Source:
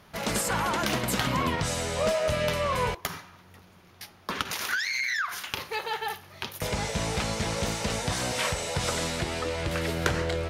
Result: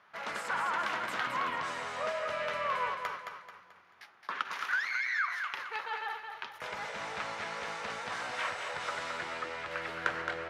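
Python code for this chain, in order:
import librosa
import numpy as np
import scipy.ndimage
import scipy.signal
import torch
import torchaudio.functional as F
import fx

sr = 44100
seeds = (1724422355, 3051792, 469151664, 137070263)

y = fx.bandpass_q(x, sr, hz=1400.0, q=1.4)
y = fx.echo_feedback(y, sr, ms=218, feedback_pct=40, wet_db=-6)
y = y * 10.0 ** (-1.5 / 20.0)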